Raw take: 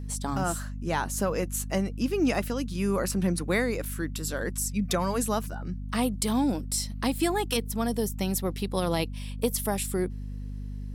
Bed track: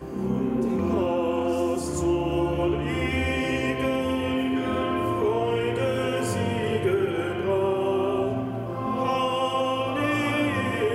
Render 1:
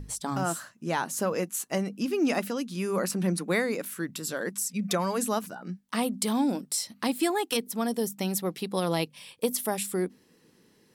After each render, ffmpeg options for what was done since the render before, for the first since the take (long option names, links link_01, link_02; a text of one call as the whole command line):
ffmpeg -i in.wav -af "bandreject=frequency=50:width_type=h:width=6,bandreject=frequency=100:width_type=h:width=6,bandreject=frequency=150:width_type=h:width=6,bandreject=frequency=200:width_type=h:width=6,bandreject=frequency=250:width_type=h:width=6" out.wav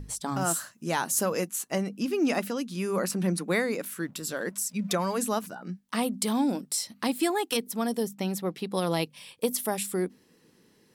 ffmpeg -i in.wav -filter_complex "[0:a]asettb=1/sr,asplit=3[link_01][link_02][link_03];[link_01]atrim=end=0.414[link_04];[link_02]atrim=start=0.41:end=1.47,asetpts=PTS-STARTPTS,afade=type=in:duration=0.004:curve=qsin,afade=type=out:start_time=1.056:duration=0.004:curve=qsin,highshelf=frequency=5200:gain=9.5[link_05];[link_03]atrim=start=1.466[link_06];[link_04][link_05]acrossfade=duration=0.004:curve1=hsin:curve2=qsin[link_07];[link_07][link_06]acrossfade=duration=0.004:curve1=qsin:curve2=hsin,asettb=1/sr,asplit=3[link_08][link_09][link_10];[link_08]atrim=end=4.024[link_11];[link_09]atrim=start=4.02:end=5.45,asetpts=PTS-STARTPTS,afade=type=in:duration=0.004:curve=qsin,afade=type=out:start_time=1.426:duration=0.004:curve=qsin,aeval=exprs='sgn(val(0))*max(abs(val(0))-0.00106,0)':channel_layout=same[link_12];[link_10]atrim=start=5.446[link_13];[link_11][link_12]acrossfade=duration=0.004:curve1=hsin:curve2=qsin[link_14];[link_14][link_13]acrossfade=duration=0.004:curve1=qsin:curve2=hsin,asettb=1/sr,asplit=3[link_15][link_16][link_17];[link_15]atrim=end=8.034[link_18];[link_16]atrim=start=8.03:end=8.72,asetpts=PTS-STARTPTS,afade=type=in:duration=0.004:curve=qsin,afade=type=out:start_time=0.686:duration=0.004:curve=qsin,highshelf=frequency=5200:gain=-8.5[link_19];[link_17]atrim=start=8.716[link_20];[link_18][link_19]acrossfade=duration=0.004:curve1=hsin:curve2=qsin[link_21];[link_21][link_20]acrossfade=duration=0.004:curve1=qsin:curve2=hsin" out.wav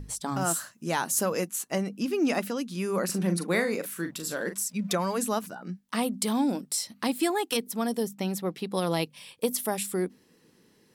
ffmpeg -i in.wav -filter_complex "[0:a]asettb=1/sr,asplit=3[link_01][link_02][link_03];[link_01]atrim=end=3.054[link_04];[link_02]atrim=start=3.05:end=4.64,asetpts=PTS-STARTPTS,afade=type=in:duration=0.004:curve=qsin,afade=type=out:start_time=1.586:duration=0.004:curve=qsin,asplit=2[link_05][link_06];[link_06]adelay=41,volume=-8.5dB[link_07];[link_05][link_07]amix=inputs=2:normalize=0,atrim=end_sample=70119[link_08];[link_03]atrim=start=4.636[link_09];[link_04][link_08]acrossfade=duration=0.004:curve1=hsin:curve2=qsin[link_10];[link_10][link_09]acrossfade=duration=0.004:curve1=qsin:curve2=hsin" out.wav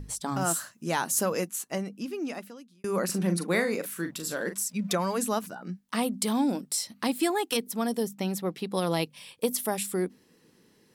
ffmpeg -i in.wav -filter_complex "[0:a]asplit=2[link_01][link_02];[link_01]atrim=end=2.84,asetpts=PTS-STARTPTS,afade=type=out:start_time=1.32:duration=1.52[link_03];[link_02]atrim=start=2.84,asetpts=PTS-STARTPTS,afade=type=in:duration=0.004:curve=hsin[link_04];[link_03][link_04]concat=n=2:v=0:a=1" out.wav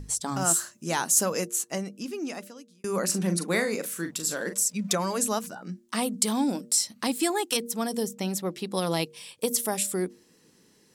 ffmpeg -i in.wav -af "equalizer=frequency=7100:width_type=o:width=1.1:gain=8,bandreject=frequency=117.4:width_type=h:width=4,bandreject=frequency=234.8:width_type=h:width=4,bandreject=frequency=352.2:width_type=h:width=4,bandreject=frequency=469.6:width_type=h:width=4,bandreject=frequency=587:width_type=h:width=4" out.wav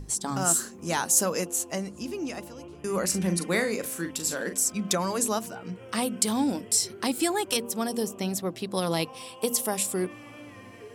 ffmpeg -i in.wav -i bed.wav -filter_complex "[1:a]volume=-21dB[link_01];[0:a][link_01]amix=inputs=2:normalize=0" out.wav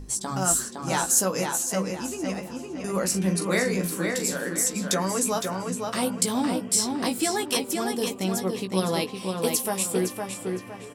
ffmpeg -i in.wav -filter_complex "[0:a]asplit=2[link_01][link_02];[link_02]adelay=16,volume=-6.5dB[link_03];[link_01][link_03]amix=inputs=2:normalize=0,asplit=2[link_04][link_05];[link_05]adelay=511,lowpass=frequency=4400:poles=1,volume=-4dB,asplit=2[link_06][link_07];[link_07]adelay=511,lowpass=frequency=4400:poles=1,volume=0.37,asplit=2[link_08][link_09];[link_09]adelay=511,lowpass=frequency=4400:poles=1,volume=0.37,asplit=2[link_10][link_11];[link_11]adelay=511,lowpass=frequency=4400:poles=1,volume=0.37,asplit=2[link_12][link_13];[link_13]adelay=511,lowpass=frequency=4400:poles=1,volume=0.37[link_14];[link_04][link_06][link_08][link_10][link_12][link_14]amix=inputs=6:normalize=0" out.wav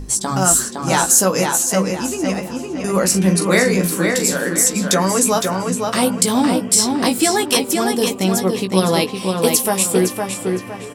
ffmpeg -i in.wav -af "volume=9.5dB,alimiter=limit=-1dB:level=0:latency=1" out.wav